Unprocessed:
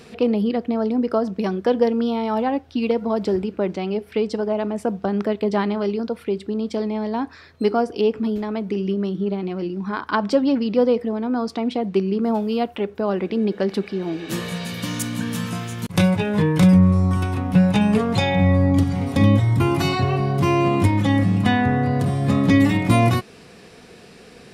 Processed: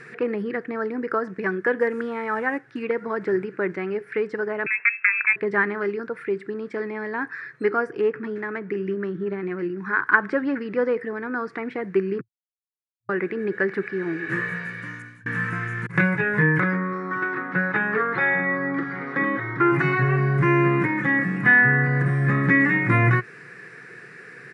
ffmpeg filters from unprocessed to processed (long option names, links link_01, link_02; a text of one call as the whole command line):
ffmpeg -i in.wav -filter_complex "[0:a]asettb=1/sr,asplit=3[link_01][link_02][link_03];[link_01]atrim=end=1.804[link_04];[link_02]atrim=start=1.8:end=2.83,asetpts=PTS-STARTPTS,afade=type=in:duration=0.004:curve=qsin,afade=type=out:start_time=1.026:duration=0.004:curve=qsin,acrusher=bits=8:mode=log:mix=0:aa=0.000001[link_05];[link_03]atrim=start=2.826[link_06];[link_04][link_05]acrossfade=duration=0.004:curve1=hsin:curve2=qsin[link_07];[link_07][link_06]acrossfade=duration=0.004:curve1=qsin:curve2=hsin,asettb=1/sr,asplit=3[link_08][link_09][link_10];[link_08]atrim=end=4.664[link_11];[link_09]atrim=start=4.66:end=5.36,asetpts=PTS-STARTPTS,afade=type=in:duration=0.004:curve=qsin,afade=type=out:start_time=0.696:duration=0.004:curve=qsin,lowpass=frequency=2400:width_type=q:width=0.5098,lowpass=frequency=2400:width_type=q:width=0.6013,lowpass=frequency=2400:width_type=q:width=0.9,lowpass=frequency=2400:width_type=q:width=2.563,afreqshift=-2800[link_12];[link_10]atrim=start=5.356[link_13];[link_11][link_12]acrossfade=duration=0.004:curve1=hsin:curve2=qsin[link_14];[link_14][link_13]acrossfade=duration=0.004:curve1=qsin:curve2=hsin,asettb=1/sr,asplit=3[link_15][link_16][link_17];[link_15]atrim=end=7.914[link_18];[link_16]atrim=start=7.91:end=9.78,asetpts=PTS-STARTPTS,afade=type=in:duration=0.004:curve=qsin,afade=type=out:start_time=1.866:duration=0.004:curve=qsin,adynamicsmooth=sensitivity=3:basefreq=4300[link_19];[link_17]atrim=start=9.776[link_20];[link_18][link_19]acrossfade=duration=0.004:curve1=hsin:curve2=qsin[link_21];[link_21][link_20]acrossfade=duration=0.004:curve1=qsin:curve2=hsin,asplit=3[link_22][link_23][link_24];[link_22]afade=type=out:start_time=16.59:duration=0.02[link_25];[link_23]highpass=280,equalizer=frequency=340:width_type=q:width=4:gain=4,equalizer=frequency=1300:width_type=q:width=4:gain=6,equalizer=frequency=2600:width_type=q:width=4:gain=-7,lowpass=frequency=4400:width=0.5412,lowpass=frequency=4400:width=1.3066,afade=type=in:start_time=16.59:duration=0.02,afade=type=out:start_time=19.71:duration=0.02[link_26];[link_24]afade=type=in:start_time=19.71:duration=0.02[link_27];[link_25][link_26][link_27]amix=inputs=3:normalize=0,asplit=4[link_28][link_29][link_30][link_31];[link_28]atrim=end=12.21,asetpts=PTS-STARTPTS,afade=type=out:start_time=12.206:duration=0.004:curve=hsin[link_32];[link_29]atrim=start=12.21:end=13.09,asetpts=PTS-STARTPTS,volume=0[link_33];[link_30]atrim=start=13.09:end=15.26,asetpts=PTS-STARTPTS,afade=type=in:duration=0.004:curve=hsin,afade=type=out:start_time=1.21:duration=0.96[link_34];[link_31]atrim=start=15.26,asetpts=PTS-STARTPTS,afade=type=in:duration=0.004:curve=hsin[link_35];[link_32][link_33][link_34][link_35]concat=n=4:v=0:a=1,acrossover=split=2900[link_36][link_37];[link_37]acompressor=threshold=-50dB:ratio=4:attack=1:release=60[link_38];[link_36][link_38]amix=inputs=2:normalize=0,afftfilt=real='re*between(b*sr/4096,110,11000)':imag='im*between(b*sr/4096,110,11000)':win_size=4096:overlap=0.75,firequalizer=gain_entry='entry(140,0);entry(220,-13);entry(350,-1);entry(660,-12);entry(1700,14);entry(3100,-13);entry(6900,-8)':delay=0.05:min_phase=1,volume=1.5dB" out.wav